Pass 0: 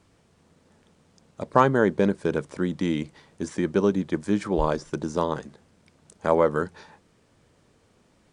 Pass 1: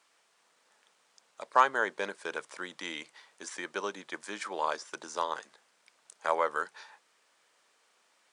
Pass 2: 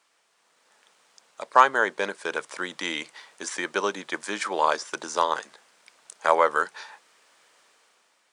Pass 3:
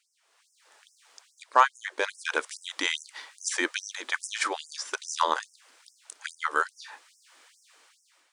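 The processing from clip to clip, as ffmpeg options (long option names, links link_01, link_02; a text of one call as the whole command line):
ffmpeg -i in.wav -af "highpass=980" out.wav
ffmpeg -i in.wav -af "dynaudnorm=framelen=200:gausssize=7:maxgain=8dB,volume=1dB" out.wav
ffmpeg -i in.wav -af "dynaudnorm=framelen=210:gausssize=3:maxgain=6dB,asubboost=boost=6:cutoff=200,afftfilt=real='re*gte(b*sr/1024,230*pow(5200/230,0.5+0.5*sin(2*PI*2.4*pts/sr)))':imag='im*gte(b*sr/1024,230*pow(5200/230,0.5+0.5*sin(2*PI*2.4*pts/sr)))':win_size=1024:overlap=0.75,volume=-2.5dB" out.wav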